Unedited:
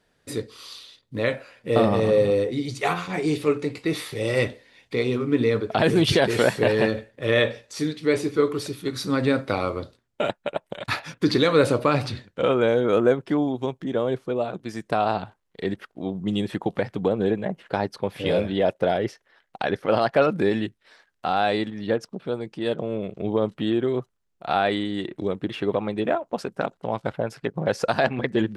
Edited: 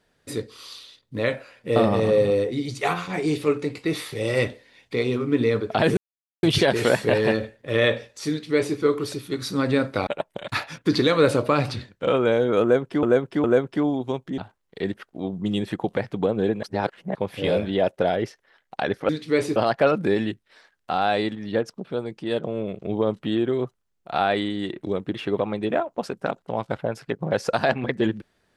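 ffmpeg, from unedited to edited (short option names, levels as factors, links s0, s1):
-filter_complex "[0:a]asplit=10[s0][s1][s2][s3][s4][s5][s6][s7][s8][s9];[s0]atrim=end=5.97,asetpts=PTS-STARTPTS,afade=t=out:st=5.966:d=0.004:c=hsin,apad=pad_dur=0.46[s10];[s1]atrim=start=5.97:end=9.612,asetpts=PTS-STARTPTS,afade=t=in:d=0.004:c=hsin[s11];[s2]atrim=start=10.428:end=13.392[s12];[s3]atrim=start=12.978:end=13.392[s13];[s4]atrim=start=12.978:end=13.922[s14];[s5]atrim=start=15.198:end=17.452[s15];[s6]atrim=start=17.448:end=17.972,asetpts=PTS-STARTPTS,areverse[s16];[s7]atrim=start=17.968:end=19.912[s17];[s8]atrim=start=7.838:end=8.312[s18];[s9]atrim=start=19.908[s19];[s10][s11]concat=n=2:v=0:a=1[s20];[s20][s12]acrossfade=d=0.004:c1=hsin:c2=hsin[s21];[s21][s13]acrossfade=d=0.004:c1=hsin:c2=hsin[s22];[s22][s14]acrossfade=d=0.004:c1=hsin:c2=hsin[s23];[s23][s15]acrossfade=d=0.004:c1=hsin:c2=hsin[s24];[s24][s16]acrossfade=d=0.004:c1=hsin:c2=hsin[s25];[s25][s17]acrossfade=d=0.004:c1=hsin:c2=hsin[s26];[s26][s18]acrossfade=d=0.004:c1=hsin:c2=hsin[s27];[s27][s19]acrossfade=d=0.004:c1=hsin:c2=hsin"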